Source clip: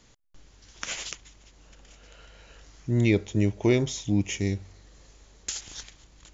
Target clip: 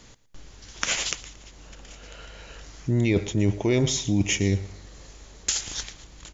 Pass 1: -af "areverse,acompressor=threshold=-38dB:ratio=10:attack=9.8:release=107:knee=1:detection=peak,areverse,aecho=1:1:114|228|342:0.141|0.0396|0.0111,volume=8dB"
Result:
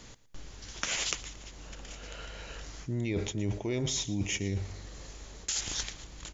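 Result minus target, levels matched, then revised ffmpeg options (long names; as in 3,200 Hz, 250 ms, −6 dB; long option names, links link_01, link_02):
downward compressor: peak gain reduction +10.5 dB
-af "areverse,acompressor=threshold=-26.5dB:ratio=10:attack=9.8:release=107:knee=1:detection=peak,areverse,aecho=1:1:114|228|342:0.141|0.0396|0.0111,volume=8dB"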